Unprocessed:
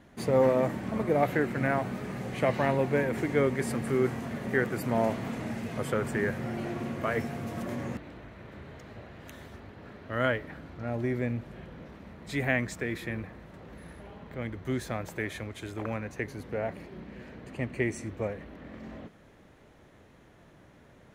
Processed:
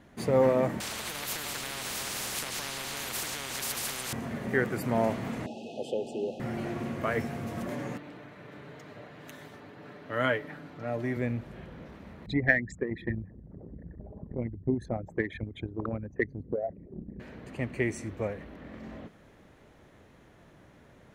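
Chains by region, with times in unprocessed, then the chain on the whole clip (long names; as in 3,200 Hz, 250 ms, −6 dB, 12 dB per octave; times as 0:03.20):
0:00.80–0:04.13: delay that plays each chunk backwards 184 ms, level −8 dB + downward compressor 3 to 1, threshold −30 dBFS + every bin compressed towards the loudest bin 10 to 1
0:05.46–0:06.40: linear-phase brick-wall band-stop 880–2,500 Hz + three-way crossover with the lows and the highs turned down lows −22 dB, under 260 Hz, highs −22 dB, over 6,500 Hz
0:07.70–0:11.17: high-pass filter 150 Hz + comb filter 6.8 ms, depth 46%
0:12.26–0:17.20: spectral envelope exaggerated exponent 3 + dynamic equaliser 430 Hz, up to −5 dB, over −46 dBFS, Q 0.89 + transient designer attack +11 dB, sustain −4 dB
whole clip: no processing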